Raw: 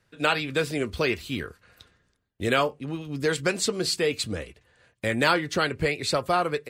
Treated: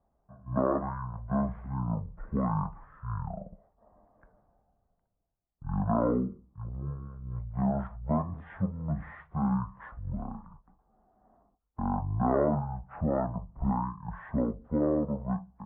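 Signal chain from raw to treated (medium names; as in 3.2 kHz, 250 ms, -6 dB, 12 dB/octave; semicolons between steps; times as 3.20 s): low-pass 2.6 kHz 24 dB/octave; speed mistake 78 rpm record played at 33 rpm; trim -4.5 dB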